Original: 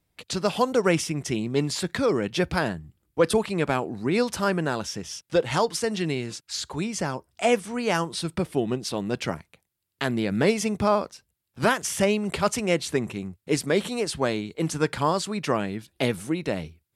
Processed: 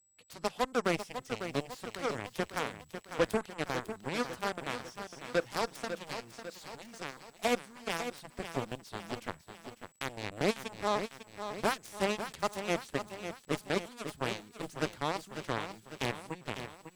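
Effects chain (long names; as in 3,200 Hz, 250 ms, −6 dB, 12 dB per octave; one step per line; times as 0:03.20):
steady tone 7,800 Hz −51 dBFS
harmonic generator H 7 −14 dB, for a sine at −8.5 dBFS
feedback echo at a low word length 549 ms, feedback 55%, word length 8 bits, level −9 dB
level −9 dB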